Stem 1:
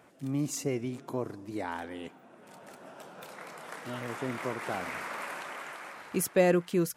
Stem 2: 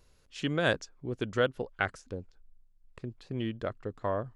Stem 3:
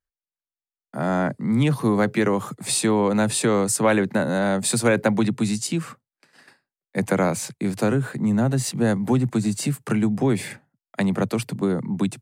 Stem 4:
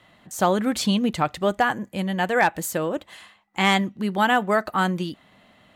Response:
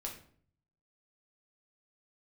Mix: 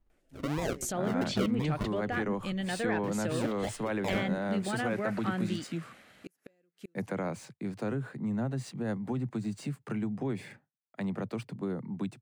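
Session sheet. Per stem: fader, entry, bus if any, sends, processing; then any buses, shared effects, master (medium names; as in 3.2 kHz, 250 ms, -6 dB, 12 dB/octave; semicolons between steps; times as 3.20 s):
-10.0 dB, 0.10 s, bus A, no send, bass shelf 96 Hz -10.5 dB; de-hum 426.8 Hz, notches 29; inverted gate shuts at -20 dBFS, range -36 dB; auto duck -9 dB, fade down 0.90 s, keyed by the second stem
+2.0 dB, 0.00 s, bus B, no send, expander on every frequency bin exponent 1.5; decimation with a swept rate 42×, swing 60% 2.9 Hz
-11.5 dB, 0.00 s, bus B, no send, median filter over 3 samples; gate with hold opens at -38 dBFS
-7.0 dB, 0.50 s, bus A, no send, low-pass that closes with the level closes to 1.9 kHz, closed at -18.5 dBFS; treble shelf 4.2 kHz +8.5 dB
bus A: 0.0 dB, peaking EQ 980 Hz -13.5 dB 0.62 oct; peak limiter -24 dBFS, peak gain reduction 7.5 dB
bus B: 0.0 dB, treble shelf 5.3 kHz -11 dB; peak limiter -24 dBFS, peak gain reduction 10.5 dB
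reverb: none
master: none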